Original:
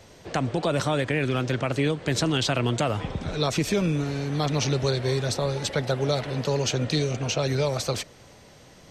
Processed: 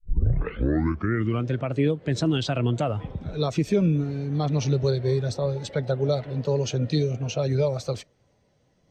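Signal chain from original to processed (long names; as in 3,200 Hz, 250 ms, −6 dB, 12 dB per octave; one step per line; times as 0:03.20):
turntable start at the beginning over 1.48 s
every bin expanded away from the loudest bin 1.5 to 1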